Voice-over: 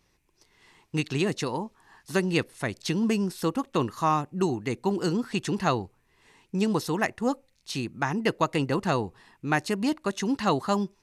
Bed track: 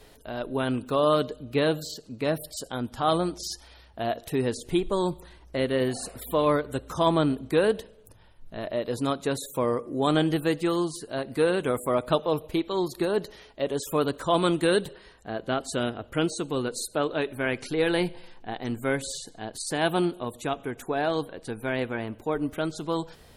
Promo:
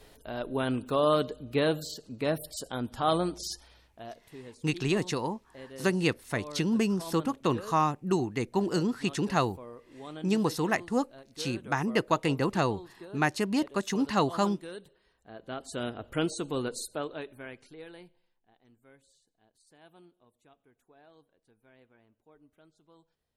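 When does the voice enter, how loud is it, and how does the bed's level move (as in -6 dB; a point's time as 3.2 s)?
3.70 s, -1.5 dB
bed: 3.52 s -2.5 dB
4.29 s -20 dB
14.93 s -20 dB
16.02 s -3.5 dB
16.72 s -3.5 dB
18.42 s -32 dB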